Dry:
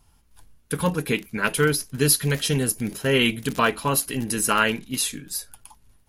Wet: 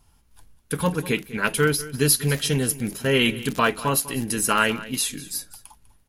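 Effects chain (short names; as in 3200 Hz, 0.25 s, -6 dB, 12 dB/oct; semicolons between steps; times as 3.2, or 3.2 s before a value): echo 0.198 s -17 dB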